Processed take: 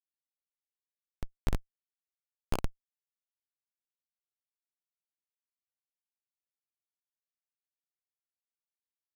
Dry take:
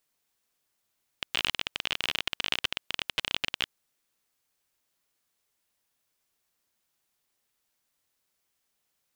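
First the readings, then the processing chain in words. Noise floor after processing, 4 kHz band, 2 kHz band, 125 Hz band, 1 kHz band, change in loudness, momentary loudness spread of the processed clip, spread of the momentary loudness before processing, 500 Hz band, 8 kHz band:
under -85 dBFS, -26.5 dB, -21.0 dB, +8.5 dB, -7.5 dB, -9.0 dB, 12 LU, 5 LU, -2.0 dB, -12.0 dB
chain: spectral sustain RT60 1.00 s; resonant high shelf 1.6 kHz -11 dB, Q 1.5; Schmitt trigger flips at -24 dBFS; trim +18 dB

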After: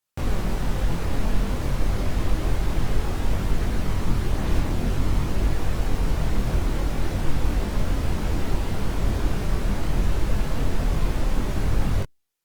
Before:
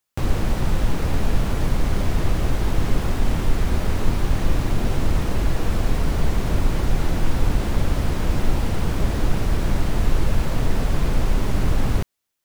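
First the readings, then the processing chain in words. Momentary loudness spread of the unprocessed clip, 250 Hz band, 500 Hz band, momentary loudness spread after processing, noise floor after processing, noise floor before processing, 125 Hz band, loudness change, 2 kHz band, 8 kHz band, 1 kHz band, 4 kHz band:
1 LU, -2.5 dB, -3.0 dB, 2 LU, -30 dBFS, -26 dBFS, -2.5 dB, -2.5 dB, -3.0 dB, -3.0 dB, -3.0 dB, -3.0 dB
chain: chorus voices 2, 0.55 Hz, delay 23 ms, depth 2.7 ms; Opus 48 kbps 48 kHz

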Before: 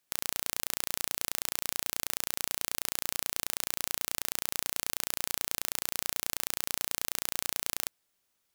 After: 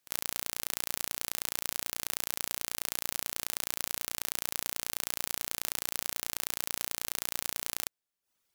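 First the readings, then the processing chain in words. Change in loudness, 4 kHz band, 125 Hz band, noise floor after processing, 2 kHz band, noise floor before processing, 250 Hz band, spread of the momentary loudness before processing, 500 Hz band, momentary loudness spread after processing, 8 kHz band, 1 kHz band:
-1.0 dB, -1.0 dB, -1.0 dB, -82 dBFS, -1.0 dB, -77 dBFS, -1.0 dB, 0 LU, -1.0 dB, 0 LU, -1.0 dB, -1.0 dB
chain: pre-echo 49 ms -16.5 dB; reverb removal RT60 0.54 s

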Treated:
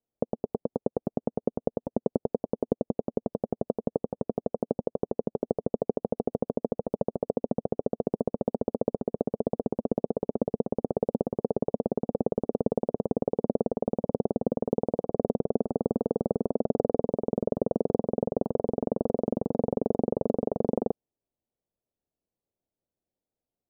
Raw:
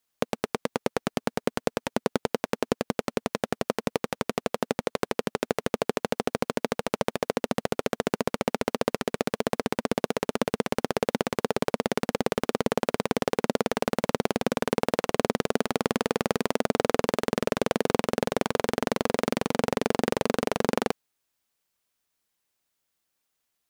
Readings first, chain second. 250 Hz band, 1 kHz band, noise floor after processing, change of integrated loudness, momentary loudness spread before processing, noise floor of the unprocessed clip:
0.0 dB, -8.0 dB, under -85 dBFS, -1.5 dB, 4 LU, -80 dBFS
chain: inverse Chebyshev low-pass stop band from 3 kHz, stop band 70 dB

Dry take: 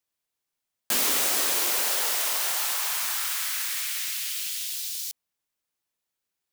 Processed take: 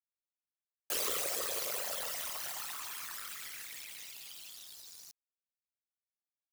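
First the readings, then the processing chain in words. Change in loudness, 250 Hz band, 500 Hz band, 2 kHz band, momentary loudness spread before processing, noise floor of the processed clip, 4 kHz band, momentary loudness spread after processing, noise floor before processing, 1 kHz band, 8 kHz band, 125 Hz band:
-12.5 dB, -12.5 dB, -5.5 dB, -13.0 dB, 8 LU, under -85 dBFS, -13.0 dB, 16 LU, -85 dBFS, -11.0 dB, -13.0 dB, no reading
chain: resonances exaggerated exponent 3; power-law waveshaper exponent 2; trim -3.5 dB

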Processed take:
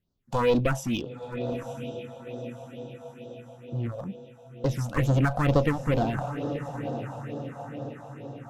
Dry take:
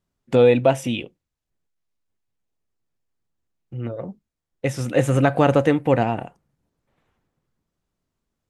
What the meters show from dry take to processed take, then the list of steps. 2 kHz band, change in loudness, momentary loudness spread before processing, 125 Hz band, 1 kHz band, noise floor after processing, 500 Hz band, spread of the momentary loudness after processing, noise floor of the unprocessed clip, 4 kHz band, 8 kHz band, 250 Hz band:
-4.5 dB, -9.5 dB, 16 LU, -2.0 dB, -5.5 dB, -50 dBFS, -8.5 dB, 18 LU, -83 dBFS, -5.0 dB, -5.0 dB, -5.0 dB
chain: peaking EQ 9.2 kHz -15 dB 0.23 oct; echo that smears into a reverb 928 ms, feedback 55%, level -12 dB; one-sided clip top -25 dBFS; phase shifter stages 4, 2.2 Hz, lowest notch 330–2200 Hz

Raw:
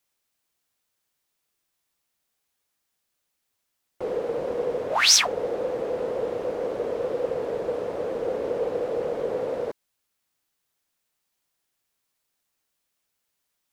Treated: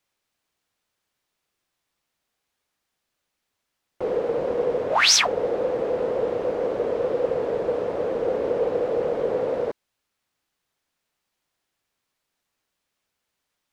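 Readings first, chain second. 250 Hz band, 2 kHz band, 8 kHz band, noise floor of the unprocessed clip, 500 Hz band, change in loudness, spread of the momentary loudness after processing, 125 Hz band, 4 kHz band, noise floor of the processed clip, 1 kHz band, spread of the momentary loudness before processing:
+3.5 dB, +2.5 dB, -1.5 dB, -79 dBFS, +3.5 dB, +2.0 dB, 9 LU, +3.5 dB, +0.5 dB, -81 dBFS, +3.5 dB, 12 LU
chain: treble shelf 6.9 kHz -11.5 dB; trim +3.5 dB

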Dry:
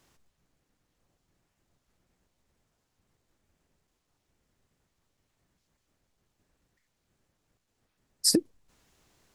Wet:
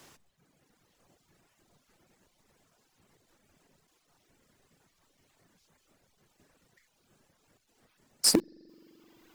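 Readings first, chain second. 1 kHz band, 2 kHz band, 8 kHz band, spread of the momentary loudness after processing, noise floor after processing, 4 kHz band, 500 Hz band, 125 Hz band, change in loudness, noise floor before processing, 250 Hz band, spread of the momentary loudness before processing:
+14.0 dB, +7.5 dB, +0.5 dB, 4 LU, -73 dBFS, +0.5 dB, +0.5 dB, +0.5 dB, +0.5 dB, -79 dBFS, -1.0 dB, 3 LU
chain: hum notches 60/120/180/240/300 Hz; spring tank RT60 2.4 s, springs 43 ms, chirp 75 ms, DRR 12.5 dB; reverb removal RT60 1.6 s; in parallel at -10 dB: companded quantiser 2-bit; on the sum: overload inside the chain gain 6 dB; three bands compressed up and down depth 40%

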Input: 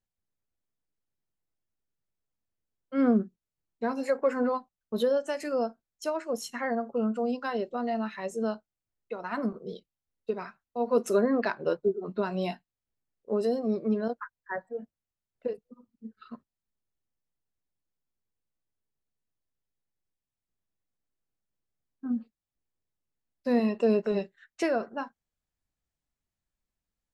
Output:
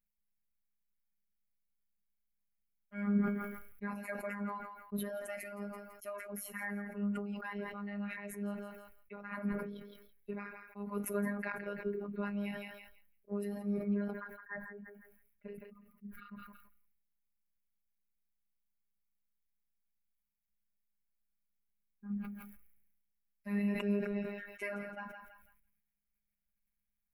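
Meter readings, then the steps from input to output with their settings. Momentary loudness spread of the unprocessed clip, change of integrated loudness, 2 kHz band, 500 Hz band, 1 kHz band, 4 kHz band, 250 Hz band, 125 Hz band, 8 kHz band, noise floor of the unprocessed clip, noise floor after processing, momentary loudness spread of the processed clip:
16 LU, -9.5 dB, -4.0 dB, -14.0 dB, -11.5 dB, -11.0 dB, -7.0 dB, -1.0 dB, -4.5 dB, under -85 dBFS, -84 dBFS, 18 LU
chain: FFT filter 120 Hz 0 dB, 350 Hz -16 dB, 700 Hz -16 dB, 1.1 kHz -13 dB, 2.3 kHz -2 dB, 3.2 kHz -18 dB, 4.8 kHz -25 dB, 7.8 kHz -20 dB, 11 kHz +1 dB; robot voice 203 Hz; thinning echo 166 ms, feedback 23%, high-pass 700 Hz, level -13 dB; decay stretcher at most 49 dB/s; trim +3 dB

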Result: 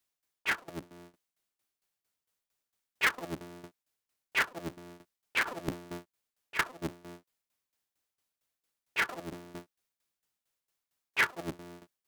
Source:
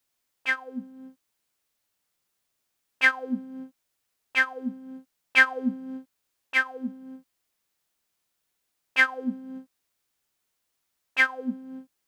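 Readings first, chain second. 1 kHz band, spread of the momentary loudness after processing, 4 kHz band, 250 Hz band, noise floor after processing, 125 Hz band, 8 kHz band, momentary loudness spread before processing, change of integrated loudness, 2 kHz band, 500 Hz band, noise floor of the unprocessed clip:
-3.5 dB, 20 LU, -4.0 dB, -11.0 dB, under -85 dBFS, no reading, +2.5 dB, 20 LU, -8.0 dB, -9.5 dB, -3.5 dB, -79 dBFS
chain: cycle switcher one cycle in 3, inverted; tremolo saw down 4.4 Hz, depth 85%; trim -3 dB

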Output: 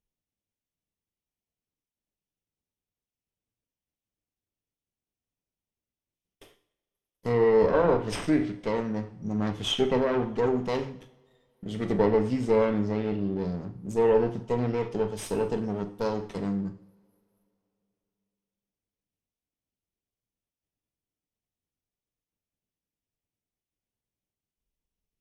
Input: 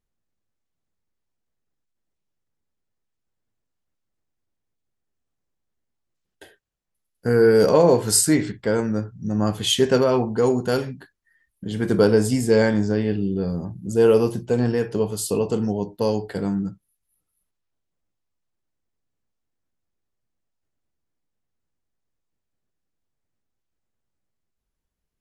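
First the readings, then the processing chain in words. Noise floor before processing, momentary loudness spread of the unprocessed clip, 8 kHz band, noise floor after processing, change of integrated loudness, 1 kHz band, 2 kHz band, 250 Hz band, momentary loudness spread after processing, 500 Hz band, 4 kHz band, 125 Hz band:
-79 dBFS, 11 LU, -19.5 dB, under -85 dBFS, -6.5 dB, -3.0 dB, -7.5 dB, -6.5 dB, 11 LU, -6.0 dB, -8.0 dB, -7.5 dB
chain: comb filter that takes the minimum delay 0.33 ms; low-pass that closes with the level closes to 2.2 kHz, closed at -14.5 dBFS; two-slope reverb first 0.59 s, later 3.3 s, from -27 dB, DRR 9 dB; trim -6 dB

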